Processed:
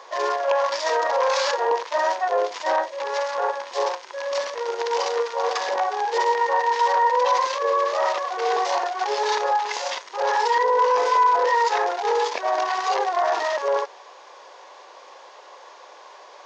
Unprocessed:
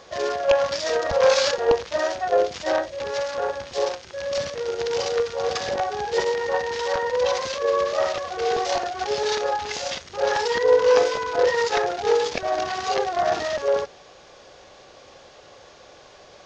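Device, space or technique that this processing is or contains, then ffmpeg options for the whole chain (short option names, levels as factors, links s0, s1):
laptop speaker: -af "highpass=f=370:w=0.5412,highpass=f=370:w=1.3066,equalizer=f=970:t=o:w=0.46:g=11.5,equalizer=f=1900:t=o:w=0.52:g=4,alimiter=limit=0.224:level=0:latency=1:release=10,equalizer=f=990:t=o:w=0.22:g=4.5,volume=0.891"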